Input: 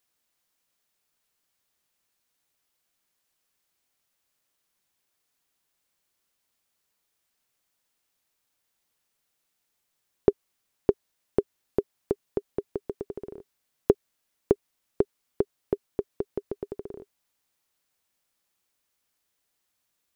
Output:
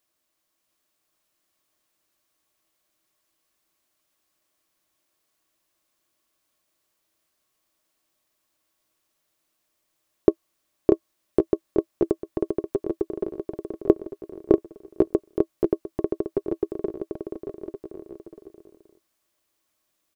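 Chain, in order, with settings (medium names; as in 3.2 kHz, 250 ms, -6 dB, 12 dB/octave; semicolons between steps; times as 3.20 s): small resonant body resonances 330/610/1100 Hz, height 11 dB, ringing for 70 ms; on a send: bouncing-ball echo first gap 640 ms, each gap 0.75×, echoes 5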